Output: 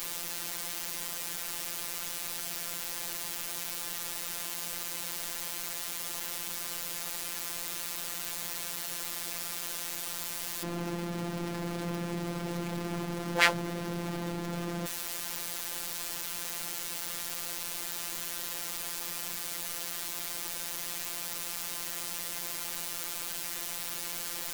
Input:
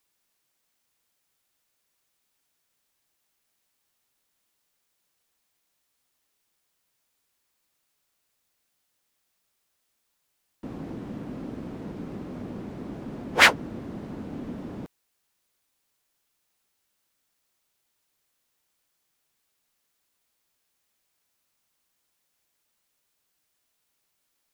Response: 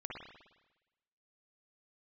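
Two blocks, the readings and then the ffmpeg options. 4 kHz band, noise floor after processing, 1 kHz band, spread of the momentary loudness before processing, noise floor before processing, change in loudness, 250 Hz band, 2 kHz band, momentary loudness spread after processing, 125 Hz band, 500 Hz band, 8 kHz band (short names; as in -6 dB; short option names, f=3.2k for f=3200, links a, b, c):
0.0 dB, -38 dBFS, -3.0 dB, 21 LU, -76 dBFS, -6.0 dB, 0.0 dB, -5.5 dB, 1 LU, +3.5 dB, 0.0 dB, +11.0 dB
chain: -af "aeval=exprs='val(0)+0.5*0.0794*sgn(val(0))':c=same,afftfilt=real='hypot(re,im)*cos(PI*b)':imag='0':win_size=1024:overlap=0.75,volume=-5.5dB"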